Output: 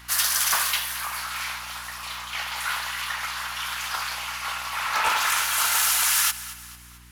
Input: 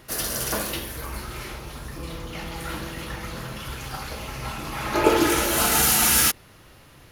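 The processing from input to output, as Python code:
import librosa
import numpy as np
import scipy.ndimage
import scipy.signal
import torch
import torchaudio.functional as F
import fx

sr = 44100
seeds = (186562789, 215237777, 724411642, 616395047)

y = fx.rider(x, sr, range_db=5, speed_s=2.0)
y = scipy.signal.sosfilt(scipy.signal.butter(6, 920.0, 'highpass', fs=sr, output='sos'), y)
y = fx.echo_feedback(y, sr, ms=223, feedback_pct=47, wet_db=-16)
y = fx.add_hum(y, sr, base_hz=60, snr_db=24)
y = fx.doppler_dist(y, sr, depth_ms=0.29)
y = F.gain(torch.from_numpy(y), 3.0).numpy()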